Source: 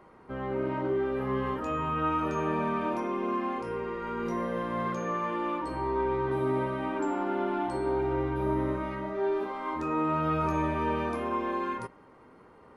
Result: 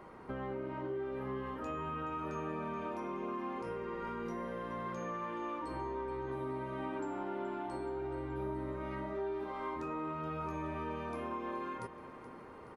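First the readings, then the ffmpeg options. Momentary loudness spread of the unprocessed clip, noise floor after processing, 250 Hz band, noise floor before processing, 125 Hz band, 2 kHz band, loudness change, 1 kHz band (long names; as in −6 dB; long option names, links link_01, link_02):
5 LU, −51 dBFS, −9.5 dB, −55 dBFS, −9.5 dB, −9.0 dB, −9.5 dB, −9.5 dB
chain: -af "acompressor=threshold=-41dB:ratio=5,aecho=1:1:425|850|1275|1700|2125|2550:0.2|0.12|0.0718|0.0431|0.0259|0.0155,volume=2.5dB"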